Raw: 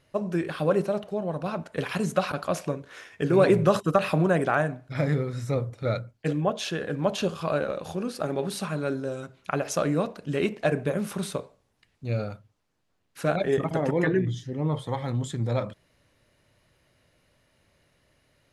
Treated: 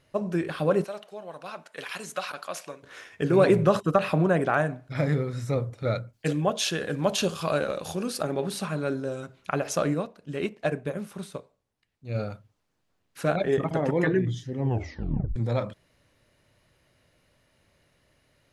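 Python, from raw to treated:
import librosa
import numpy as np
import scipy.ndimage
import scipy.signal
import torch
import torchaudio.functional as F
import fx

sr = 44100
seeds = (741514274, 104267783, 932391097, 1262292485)

y = fx.highpass(x, sr, hz=1500.0, slope=6, at=(0.84, 2.83))
y = fx.high_shelf(y, sr, hz=4300.0, db=-5.0, at=(3.64, 4.54))
y = fx.high_shelf(y, sr, hz=3500.0, db=10.0, at=(6.13, 8.23))
y = fx.upward_expand(y, sr, threshold_db=-37.0, expansion=1.5, at=(9.93, 12.14), fade=0.02)
y = fx.high_shelf(y, sr, hz=6700.0, db=-5.5, at=(13.33, 13.91))
y = fx.edit(y, sr, fx.tape_stop(start_s=14.56, length_s=0.8), tone=tone)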